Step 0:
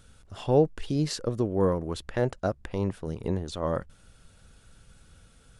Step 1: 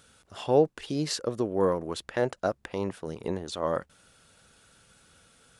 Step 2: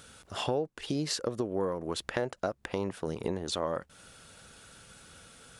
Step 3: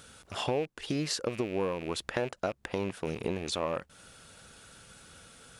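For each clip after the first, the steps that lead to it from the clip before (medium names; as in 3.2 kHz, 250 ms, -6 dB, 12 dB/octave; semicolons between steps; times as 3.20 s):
high-pass 370 Hz 6 dB/octave; trim +2.5 dB
compression 5:1, threshold -35 dBFS, peak gain reduction 17.5 dB; trim +6 dB
rattle on loud lows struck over -43 dBFS, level -33 dBFS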